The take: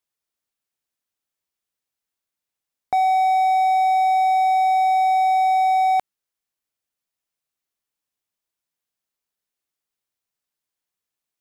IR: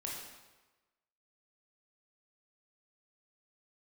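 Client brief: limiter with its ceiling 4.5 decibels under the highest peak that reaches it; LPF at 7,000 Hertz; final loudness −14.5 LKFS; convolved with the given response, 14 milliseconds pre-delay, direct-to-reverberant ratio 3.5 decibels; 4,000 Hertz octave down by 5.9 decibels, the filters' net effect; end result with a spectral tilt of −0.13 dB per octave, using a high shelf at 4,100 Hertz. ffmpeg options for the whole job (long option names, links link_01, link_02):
-filter_complex "[0:a]lowpass=7000,equalizer=frequency=4000:width_type=o:gain=-8,highshelf=frequency=4100:gain=3.5,alimiter=limit=-18dB:level=0:latency=1,asplit=2[link_01][link_02];[1:a]atrim=start_sample=2205,adelay=14[link_03];[link_02][link_03]afir=irnorm=-1:irlink=0,volume=-4dB[link_04];[link_01][link_04]amix=inputs=2:normalize=0,volume=15dB"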